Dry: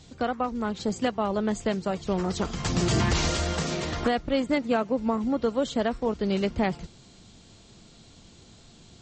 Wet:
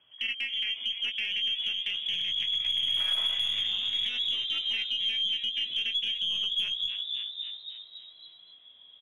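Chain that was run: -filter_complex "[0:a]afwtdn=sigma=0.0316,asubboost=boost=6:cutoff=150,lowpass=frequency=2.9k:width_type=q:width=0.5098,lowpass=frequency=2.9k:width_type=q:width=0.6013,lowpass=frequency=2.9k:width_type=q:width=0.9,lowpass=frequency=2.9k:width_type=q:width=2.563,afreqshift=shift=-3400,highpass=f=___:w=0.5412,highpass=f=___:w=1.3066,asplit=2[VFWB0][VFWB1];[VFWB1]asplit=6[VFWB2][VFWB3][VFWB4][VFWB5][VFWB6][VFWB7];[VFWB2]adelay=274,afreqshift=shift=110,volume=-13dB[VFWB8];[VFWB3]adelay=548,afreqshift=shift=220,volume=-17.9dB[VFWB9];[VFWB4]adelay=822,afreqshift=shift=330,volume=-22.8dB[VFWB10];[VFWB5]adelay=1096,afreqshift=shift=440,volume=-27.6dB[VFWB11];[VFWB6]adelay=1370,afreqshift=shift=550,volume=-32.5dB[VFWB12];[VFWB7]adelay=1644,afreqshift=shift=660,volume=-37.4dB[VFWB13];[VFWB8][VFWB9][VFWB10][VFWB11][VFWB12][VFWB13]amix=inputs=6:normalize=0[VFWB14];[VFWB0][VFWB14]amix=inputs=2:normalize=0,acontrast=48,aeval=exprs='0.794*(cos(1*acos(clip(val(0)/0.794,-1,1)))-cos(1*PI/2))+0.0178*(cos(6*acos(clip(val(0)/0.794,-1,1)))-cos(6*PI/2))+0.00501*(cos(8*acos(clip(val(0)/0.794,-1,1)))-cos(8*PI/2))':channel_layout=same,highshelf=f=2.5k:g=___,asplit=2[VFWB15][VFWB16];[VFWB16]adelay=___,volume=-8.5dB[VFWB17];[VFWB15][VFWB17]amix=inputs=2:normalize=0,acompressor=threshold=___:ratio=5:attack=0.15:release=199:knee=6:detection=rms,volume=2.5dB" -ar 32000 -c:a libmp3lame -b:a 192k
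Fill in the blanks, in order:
49, 49, -7.5, 17, -27dB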